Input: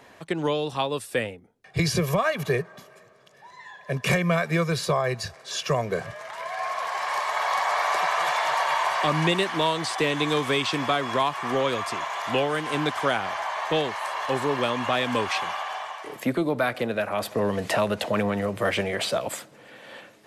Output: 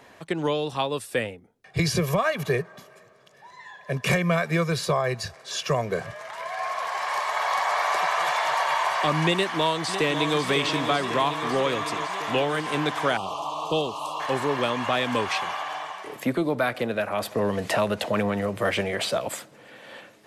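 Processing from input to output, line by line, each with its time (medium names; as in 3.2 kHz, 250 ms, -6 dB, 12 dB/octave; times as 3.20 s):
9.33–10.41 s: echo throw 550 ms, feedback 75%, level -8 dB
13.17–14.20 s: elliptic band-stop 1.2–2.7 kHz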